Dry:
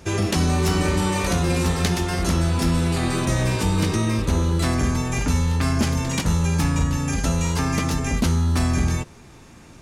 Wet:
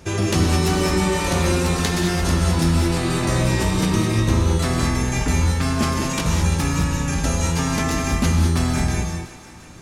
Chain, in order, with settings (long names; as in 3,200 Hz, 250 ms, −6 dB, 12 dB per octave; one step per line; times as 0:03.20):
on a send: feedback echo with a high-pass in the loop 345 ms, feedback 54%, high-pass 420 Hz, level −15 dB
on the sum: reverb whose tail is shaped and stops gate 240 ms rising, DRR 1.5 dB